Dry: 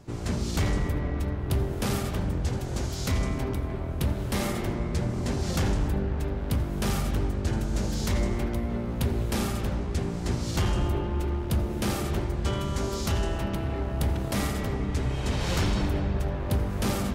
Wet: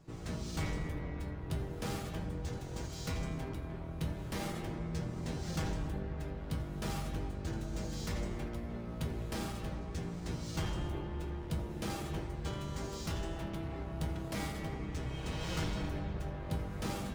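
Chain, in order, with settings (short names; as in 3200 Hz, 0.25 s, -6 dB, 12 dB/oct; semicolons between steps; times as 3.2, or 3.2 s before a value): median filter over 3 samples; resonator 160 Hz, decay 0.19 s, harmonics all, mix 80%; gain -1.5 dB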